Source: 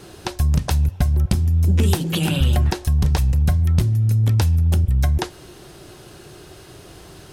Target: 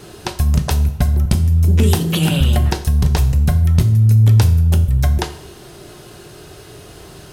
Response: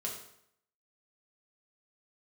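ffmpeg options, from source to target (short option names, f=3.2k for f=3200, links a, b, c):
-filter_complex "[0:a]asplit=2[a][b];[1:a]atrim=start_sample=2205,highshelf=f=12k:g=7[c];[b][c]afir=irnorm=-1:irlink=0,volume=-4.5dB[d];[a][d]amix=inputs=2:normalize=0"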